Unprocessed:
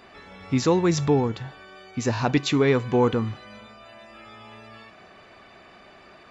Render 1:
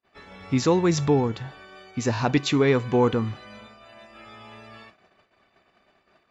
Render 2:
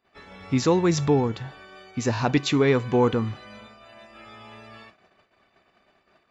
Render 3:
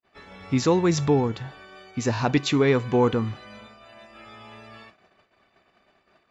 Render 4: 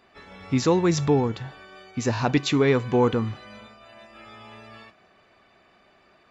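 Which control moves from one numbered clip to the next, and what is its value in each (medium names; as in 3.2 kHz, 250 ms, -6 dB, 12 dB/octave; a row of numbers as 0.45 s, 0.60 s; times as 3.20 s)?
gate, range: -39 dB, -25 dB, -51 dB, -9 dB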